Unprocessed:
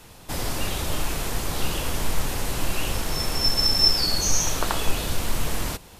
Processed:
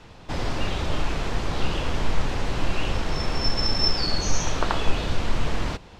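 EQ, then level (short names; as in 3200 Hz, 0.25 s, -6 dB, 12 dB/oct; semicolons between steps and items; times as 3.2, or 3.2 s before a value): air absorption 150 m; +2.0 dB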